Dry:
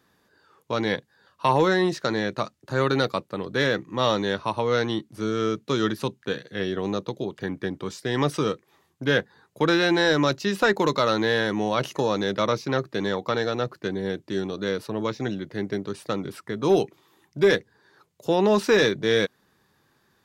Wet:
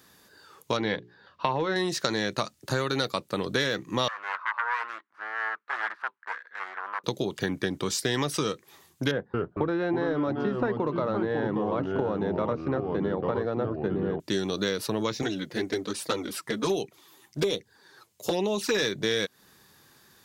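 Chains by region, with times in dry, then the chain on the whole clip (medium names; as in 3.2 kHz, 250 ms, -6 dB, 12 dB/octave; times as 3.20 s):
0.77–1.76 s: distance through air 260 m + hum notches 60/120/180/240/300/360/420 Hz
4.08–7.04 s: self-modulated delay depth 0.72 ms + Butterworth band-pass 1.3 kHz, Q 1.8
9.11–14.20 s: low-pass 1 kHz + ever faster or slower copies 228 ms, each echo -3 st, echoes 2, each echo -6 dB
15.22–18.75 s: bass shelf 150 Hz -4.5 dB + touch-sensitive flanger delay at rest 10.6 ms, full sweep at -16.5 dBFS
whole clip: compression 10:1, threshold -28 dBFS; treble shelf 3.4 kHz +11.5 dB; trim +4 dB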